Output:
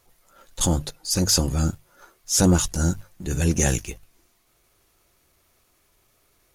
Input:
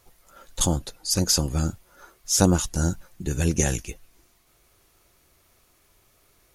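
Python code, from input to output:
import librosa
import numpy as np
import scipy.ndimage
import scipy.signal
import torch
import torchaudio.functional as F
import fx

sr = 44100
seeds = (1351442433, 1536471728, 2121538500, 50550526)

y = fx.hum_notches(x, sr, base_hz=50, count=3)
y = fx.leveller(y, sr, passes=1)
y = fx.transient(y, sr, attack_db=-6, sustain_db=0)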